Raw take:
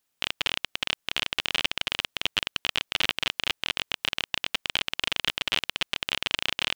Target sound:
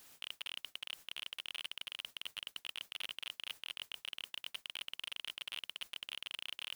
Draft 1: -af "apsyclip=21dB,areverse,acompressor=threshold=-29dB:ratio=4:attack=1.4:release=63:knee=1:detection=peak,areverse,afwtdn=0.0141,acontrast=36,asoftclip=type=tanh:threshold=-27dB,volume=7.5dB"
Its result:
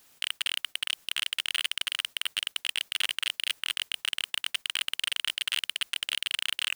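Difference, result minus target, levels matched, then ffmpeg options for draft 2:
compressor: peak gain reduction -8 dB
-af "apsyclip=21dB,areverse,acompressor=threshold=-39.5dB:ratio=4:attack=1.4:release=63:knee=1:detection=peak,areverse,afwtdn=0.0141,acontrast=36,asoftclip=type=tanh:threshold=-27dB,volume=7.5dB"

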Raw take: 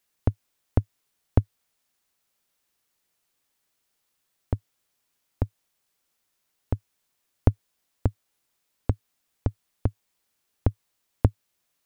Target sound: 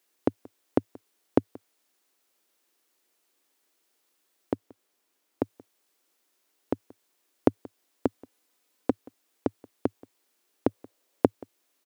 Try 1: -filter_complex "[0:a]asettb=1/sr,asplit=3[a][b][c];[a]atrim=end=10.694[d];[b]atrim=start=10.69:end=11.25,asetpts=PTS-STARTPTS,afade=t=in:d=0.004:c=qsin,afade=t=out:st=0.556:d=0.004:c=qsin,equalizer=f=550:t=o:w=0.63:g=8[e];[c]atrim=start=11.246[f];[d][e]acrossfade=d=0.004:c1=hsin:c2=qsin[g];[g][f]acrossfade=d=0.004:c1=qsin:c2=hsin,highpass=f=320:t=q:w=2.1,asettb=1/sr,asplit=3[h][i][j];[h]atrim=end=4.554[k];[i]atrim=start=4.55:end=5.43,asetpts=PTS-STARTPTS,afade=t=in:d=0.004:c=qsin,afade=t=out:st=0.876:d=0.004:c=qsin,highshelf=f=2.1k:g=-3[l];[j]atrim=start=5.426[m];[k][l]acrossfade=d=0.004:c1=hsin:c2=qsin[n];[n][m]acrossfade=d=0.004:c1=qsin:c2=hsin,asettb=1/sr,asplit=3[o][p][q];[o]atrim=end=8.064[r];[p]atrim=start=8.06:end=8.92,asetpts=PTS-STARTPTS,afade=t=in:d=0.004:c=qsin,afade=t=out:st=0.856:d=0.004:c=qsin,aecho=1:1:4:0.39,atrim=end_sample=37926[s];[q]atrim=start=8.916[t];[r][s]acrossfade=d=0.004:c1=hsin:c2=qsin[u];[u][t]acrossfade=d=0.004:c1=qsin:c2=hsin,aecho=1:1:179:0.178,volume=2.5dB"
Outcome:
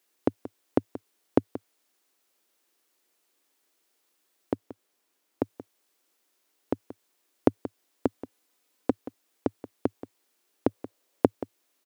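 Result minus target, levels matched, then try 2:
echo-to-direct +9 dB
-filter_complex "[0:a]asettb=1/sr,asplit=3[a][b][c];[a]atrim=end=10.694[d];[b]atrim=start=10.69:end=11.25,asetpts=PTS-STARTPTS,afade=t=in:d=0.004:c=qsin,afade=t=out:st=0.556:d=0.004:c=qsin,equalizer=f=550:t=o:w=0.63:g=8[e];[c]atrim=start=11.246[f];[d][e]acrossfade=d=0.004:c1=hsin:c2=qsin[g];[g][f]acrossfade=d=0.004:c1=qsin:c2=hsin,highpass=f=320:t=q:w=2.1,asettb=1/sr,asplit=3[h][i][j];[h]atrim=end=4.554[k];[i]atrim=start=4.55:end=5.43,asetpts=PTS-STARTPTS,afade=t=in:d=0.004:c=qsin,afade=t=out:st=0.876:d=0.004:c=qsin,highshelf=f=2.1k:g=-3[l];[j]atrim=start=5.426[m];[k][l]acrossfade=d=0.004:c1=hsin:c2=qsin[n];[n][m]acrossfade=d=0.004:c1=qsin:c2=hsin,asettb=1/sr,asplit=3[o][p][q];[o]atrim=end=8.064[r];[p]atrim=start=8.06:end=8.92,asetpts=PTS-STARTPTS,afade=t=in:d=0.004:c=qsin,afade=t=out:st=0.856:d=0.004:c=qsin,aecho=1:1:4:0.39,atrim=end_sample=37926[s];[q]atrim=start=8.916[t];[r][s]acrossfade=d=0.004:c1=hsin:c2=qsin[u];[u][t]acrossfade=d=0.004:c1=qsin:c2=hsin,aecho=1:1:179:0.0631,volume=2.5dB"

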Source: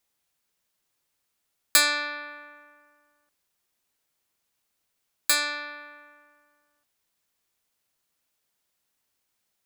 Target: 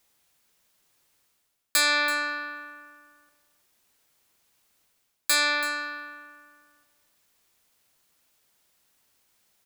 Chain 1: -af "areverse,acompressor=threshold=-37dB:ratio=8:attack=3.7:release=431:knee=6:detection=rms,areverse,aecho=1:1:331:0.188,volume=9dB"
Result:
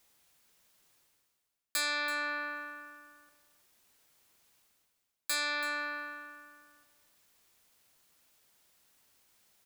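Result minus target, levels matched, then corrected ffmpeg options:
compressor: peak gain reduction +10 dB
-af "areverse,acompressor=threshold=-25.5dB:ratio=8:attack=3.7:release=431:knee=6:detection=rms,areverse,aecho=1:1:331:0.188,volume=9dB"

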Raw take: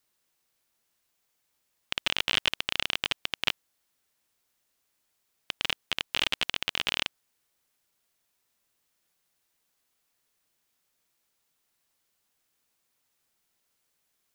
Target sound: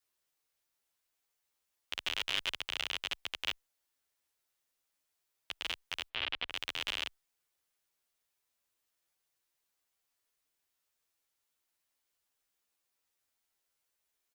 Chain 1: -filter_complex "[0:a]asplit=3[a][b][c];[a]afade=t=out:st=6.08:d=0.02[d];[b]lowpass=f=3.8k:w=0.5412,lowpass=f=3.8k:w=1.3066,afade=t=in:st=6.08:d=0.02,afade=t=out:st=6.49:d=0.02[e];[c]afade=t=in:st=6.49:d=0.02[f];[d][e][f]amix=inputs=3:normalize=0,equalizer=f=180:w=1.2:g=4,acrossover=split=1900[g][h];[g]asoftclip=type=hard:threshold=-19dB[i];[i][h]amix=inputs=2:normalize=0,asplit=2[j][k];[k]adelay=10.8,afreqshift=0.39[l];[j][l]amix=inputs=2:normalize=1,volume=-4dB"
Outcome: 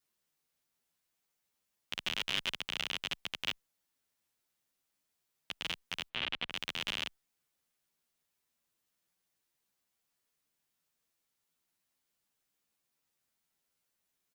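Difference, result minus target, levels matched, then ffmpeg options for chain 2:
250 Hz band +6.0 dB
-filter_complex "[0:a]asplit=3[a][b][c];[a]afade=t=out:st=6.08:d=0.02[d];[b]lowpass=f=3.8k:w=0.5412,lowpass=f=3.8k:w=1.3066,afade=t=in:st=6.08:d=0.02,afade=t=out:st=6.49:d=0.02[e];[c]afade=t=in:st=6.49:d=0.02[f];[d][e][f]amix=inputs=3:normalize=0,equalizer=f=180:w=1.2:g=-7,acrossover=split=1900[g][h];[g]asoftclip=type=hard:threshold=-19dB[i];[i][h]amix=inputs=2:normalize=0,asplit=2[j][k];[k]adelay=10.8,afreqshift=0.39[l];[j][l]amix=inputs=2:normalize=1,volume=-4dB"

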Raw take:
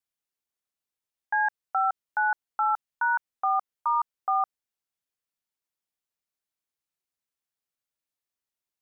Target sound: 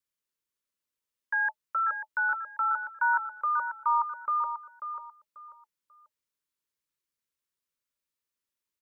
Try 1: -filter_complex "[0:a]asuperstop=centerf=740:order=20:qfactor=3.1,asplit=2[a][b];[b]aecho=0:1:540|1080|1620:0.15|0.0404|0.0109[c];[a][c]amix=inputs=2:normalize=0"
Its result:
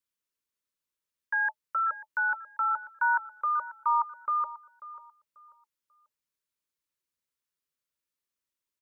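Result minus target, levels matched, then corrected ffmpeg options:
echo-to-direct -7.5 dB
-filter_complex "[0:a]asuperstop=centerf=740:order=20:qfactor=3.1,asplit=2[a][b];[b]aecho=0:1:540|1080|1620:0.355|0.0958|0.0259[c];[a][c]amix=inputs=2:normalize=0"

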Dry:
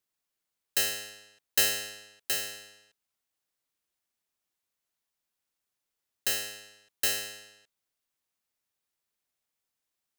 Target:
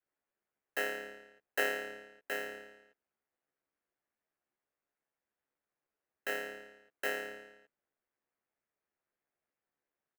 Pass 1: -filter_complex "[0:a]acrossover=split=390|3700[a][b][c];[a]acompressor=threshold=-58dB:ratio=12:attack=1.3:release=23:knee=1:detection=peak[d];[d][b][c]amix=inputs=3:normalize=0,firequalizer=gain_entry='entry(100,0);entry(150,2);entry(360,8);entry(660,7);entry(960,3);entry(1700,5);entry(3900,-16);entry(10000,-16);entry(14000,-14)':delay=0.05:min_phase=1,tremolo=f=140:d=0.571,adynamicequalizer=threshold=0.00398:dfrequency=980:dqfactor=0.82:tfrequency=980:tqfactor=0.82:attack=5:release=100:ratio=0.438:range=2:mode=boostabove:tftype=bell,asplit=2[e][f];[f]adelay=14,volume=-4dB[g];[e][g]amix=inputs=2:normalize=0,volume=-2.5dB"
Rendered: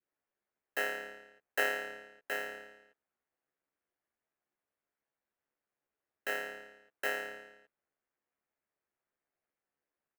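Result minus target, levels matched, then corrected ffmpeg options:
250 Hz band -3.5 dB
-filter_complex "[0:a]acrossover=split=390|3700[a][b][c];[a]acompressor=threshold=-58dB:ratio=12:attack=1.3:release=23:knee=1:detection=peak[d];[d][b][c]amix=inputs=3:normalize=0,firequalizer=gain_entry='entry(100,0);entry(150,2);entry(360,8);entry(660,7);entry(960,3);entry(1700,5);entry(3900,-16);entry(10000,-16);entry(14000,-14)':delay=0.05:min_phase=1,tremolo=f=140:d=0.571,adynamicequalizer=threshold=0.00398:dfrequency=300:dqfactor=0.82:tfrequency=300:tqfactor=0.82:attack=5:release=100:ratio=0.438:range=2:mode=boostabove:tftype=bell,asplit=2[e][f];[f]adelay=14,volume=-4dB[g];[e][g]amix=inputs=2:normalize=0,volume=-2.5dB"

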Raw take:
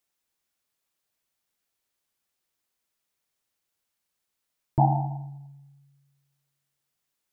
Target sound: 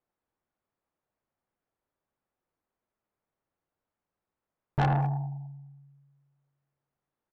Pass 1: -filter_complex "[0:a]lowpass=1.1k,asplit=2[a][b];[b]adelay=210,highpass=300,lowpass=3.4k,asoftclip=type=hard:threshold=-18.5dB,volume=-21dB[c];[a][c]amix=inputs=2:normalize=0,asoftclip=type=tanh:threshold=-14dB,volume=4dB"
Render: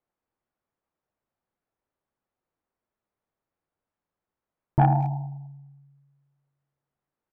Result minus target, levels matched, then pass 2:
soft clip: distortion -11 dB
-filter_complex "[0:a]lowpass=1.1k,asplit=2[a][b];[b]adelay=210,highpass=300,lowpass=3.4k,asoftclip=type=hard:threshold=-18.5dB,volume=-21dB[c];[a][c]amix=inputs=2:normalize=0,asoftclip=type=tanh:threshold=-25.5dB,volume=4dB"

